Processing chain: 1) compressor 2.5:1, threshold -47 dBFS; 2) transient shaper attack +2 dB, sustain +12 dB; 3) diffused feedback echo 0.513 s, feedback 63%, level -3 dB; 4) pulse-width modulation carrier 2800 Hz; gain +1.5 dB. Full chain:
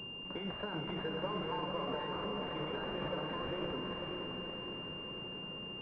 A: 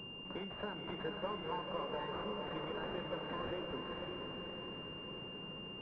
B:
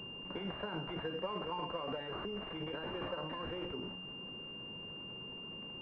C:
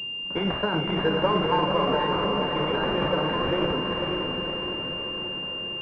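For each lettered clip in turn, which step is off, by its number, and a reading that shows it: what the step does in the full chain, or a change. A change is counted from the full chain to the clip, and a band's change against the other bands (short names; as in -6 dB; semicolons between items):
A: 2, loudness change -3.0 LU; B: 3, loudness change -2.0 LU; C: 1, mean gain reduction 8.0 dB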